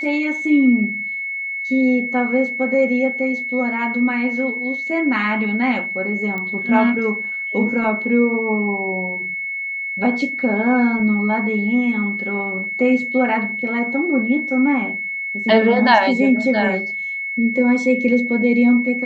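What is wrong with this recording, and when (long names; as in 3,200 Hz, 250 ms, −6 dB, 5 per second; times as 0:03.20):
whistle 2,200 Hz −23 dBFS
0:06.38: click −15 dBFS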